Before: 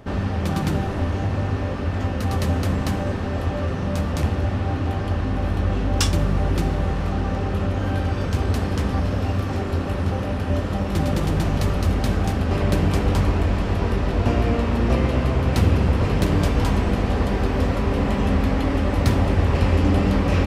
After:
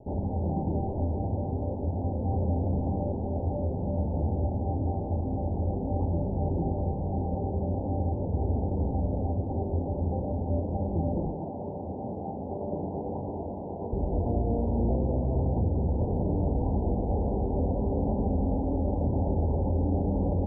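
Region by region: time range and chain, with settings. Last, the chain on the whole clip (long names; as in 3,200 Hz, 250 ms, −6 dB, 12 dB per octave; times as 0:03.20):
0:11.26–0:13.93: high-pass filter 120 Hz + low-shelf EQ 400 Hz −7.5 dB
whole clip: Butterworth low-pass 900 Hz 96 dB per octave; mains-hum notches 50/100/150/200/250/300 Hz; brickwall limiter −14 dBFS; level −4.5 dB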